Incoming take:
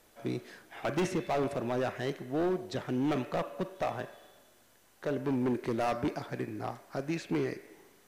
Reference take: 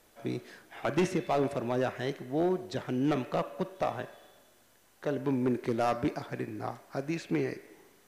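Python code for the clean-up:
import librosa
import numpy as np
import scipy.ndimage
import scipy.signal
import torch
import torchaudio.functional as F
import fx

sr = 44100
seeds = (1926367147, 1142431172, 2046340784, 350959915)

y = fx.fix_declip(x, sr, threshold_db=-25.5)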